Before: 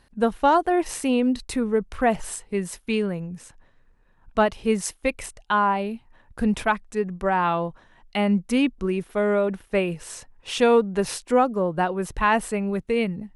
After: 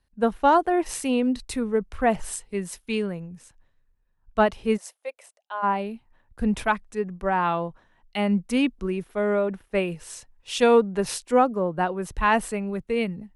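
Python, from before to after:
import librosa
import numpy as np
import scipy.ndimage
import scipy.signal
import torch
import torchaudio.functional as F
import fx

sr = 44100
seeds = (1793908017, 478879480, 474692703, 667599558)

y = fx.ladder_highpass(x, sr, hz=510.0, resonance_pct=55, at=(4.76, 5.62), fade=0.02)
y = fx.band_widen(y, sr, depth_pct=40)
y = F.gain(torch.from_numpy(y), -1.5).numpy()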